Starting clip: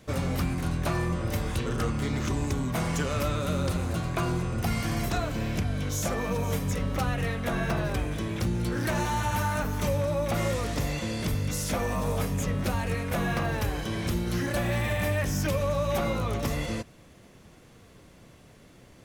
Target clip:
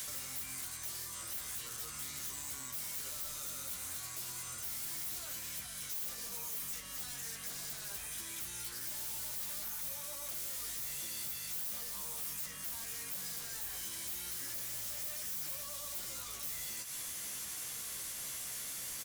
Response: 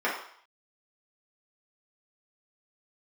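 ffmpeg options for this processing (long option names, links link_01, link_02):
-filter_complex "[0:a]acrossover=split=1000[link_01][link_02];[link_02]aeval=exprs='0.0944*sin(PI/2*8.91*val(0)/0.0944)':channel_layout=same[link_03];[link_01][link_03]amix=inputs=2:normalize=0,bandreject=frequency=2600:width=27,areverse,acompressor=threshold=-33dB:ratio=6,areverse,alimiter=level_in=12dB:limit=-24dB:level=0:latency=1:release=468,volume=-12dB,acrossover=split=600|5300[link_04][link_05][link_06];[link_04]acompressor=threshold=-57dB:ratio=4[link_07];[link_05]acompressor=threshold=-57dB:ratio=4[link_08];[link_06]acompressor=threshold=-54dB:ratio=4[link_09];[link_07][link_08][link_09]amix=inputs=3:normalize=0,aemphasis=mode=production:type=75kf,asoftclip=type=hard:threshold=-37.5dB,asplit=2[link_10][link_11];[link_11]adelay=15,volume=-5.5dB[link_12];[link_10][link_12]amix=inputs=2:normalize=0"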